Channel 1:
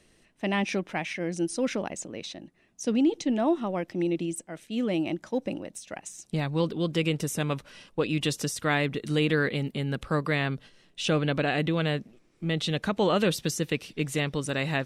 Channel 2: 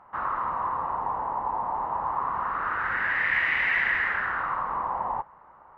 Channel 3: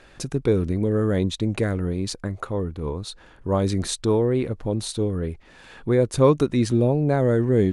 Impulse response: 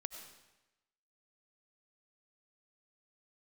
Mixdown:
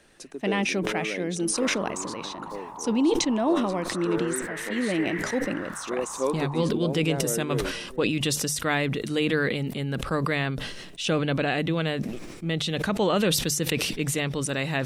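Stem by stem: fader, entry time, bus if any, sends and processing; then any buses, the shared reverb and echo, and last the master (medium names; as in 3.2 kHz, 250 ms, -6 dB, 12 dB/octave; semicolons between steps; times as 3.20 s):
+0.5 dB, 0.00 s, no send, no echo send, treble shelf 9.5 kHz +4.5 dB; decay stretcher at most 39 dB/s
-11.5 dB, 1.40 s, no send, no echo send, none
-9.5 dB, 0.00 s, no send, echo send -14 dB, high-pass 260 Hz 24 dB/octave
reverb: none
echo: delay 427 ms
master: hum notches 50/100/150 Hz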